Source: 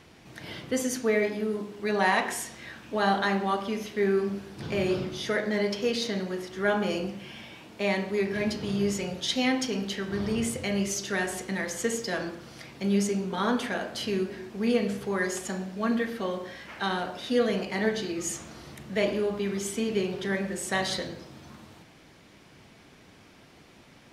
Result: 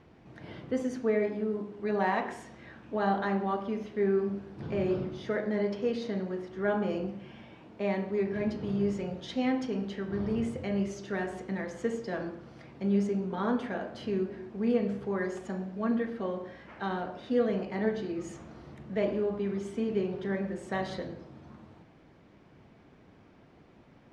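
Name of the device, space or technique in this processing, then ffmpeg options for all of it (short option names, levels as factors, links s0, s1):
through cloth: -af "lowpass=7900,highshelf=f=2300:g=-18,volume=0.841"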